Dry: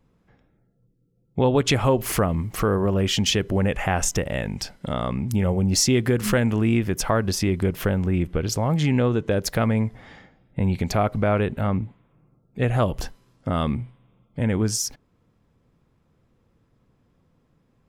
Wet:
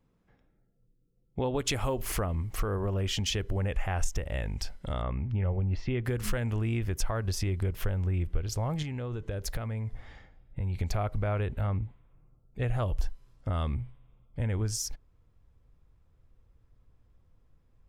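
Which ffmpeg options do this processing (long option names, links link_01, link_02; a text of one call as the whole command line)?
ffmpeg -i in.wav -filter_complex "[0:a]asettb=1/sr,asplit=3[link_01][link_02][link_03];[link_01]atrim=end=1.594[link_04];[link_02]atrim=start=1.59:end=2.02,asetpts=PTS-STARTPTS,afade=type=in:duration=0.004:curve=qsin,afade=type=out:start_time=0.426:duration=0.004:curve=qsin,highshelf=frequency=6800:gain=11[link_05];[link_03]atrim=start=2.016[link_06];[link_04][link_05]acrossfade=duration=0.004:curve1=hsin:curve2=qsin[link_07];[link_07][link_06]acrossfade=duration=0.004:curve1=qsin:curve2=hsin,asettb=1/sr,asplit=3[link_08][link_09][link_10];[link_08]atrim=end=5.024[link_11];[link_09]atrim=start=5.02:end=6.05,asetpts=PTS-STARTPTS,afade=type=in:duration=0.004:curve=qsin,afade=type=out:start_time=1.026:duration=0.004:curve=qsin,lowpass=frequency=2800:width=0.5412,lowpass=frequency=2800:width=1.3066[link_12];[link_10]atrim=start=6.046[link_13];[link_11][link_12]acrossfade=duration=0.004:curve1=hsin:curve2=qsin[link_14];[link_14][link_13]acrossfade=duration=0.004:curve1=qsin:curve2=hsin,asettb=1/sr,asplit=3[link_15][link_16][link_17];[link_15]atrim=end=8.824[link_18];[link_16]atrim=start=8.82:end=10.81,asetpts=PTS-STARTPTS,afade=type=in:duration=0.004:curve=qsin,afade=type=out:start_time=1.986:duration=0.004:curve=qsin,acompressor=threshold=-24dB:ratio=4:attack=3.2:release=140:knee=1:detection=peak[link_19];[link_17]atrim=start=10.806[link_20];[link_18][link_19]acrossfade=duration=0.004:curve1=hsin:curve2=qsin[link_21];[link_21][link_20]acrossfade=duration=0.004:curve1=qsin:curve2=hsin,asubboost=boost=9.5:cutoff=62,acompressor=threshold=-21dB:ratio=2,volume=-7dB" out.wav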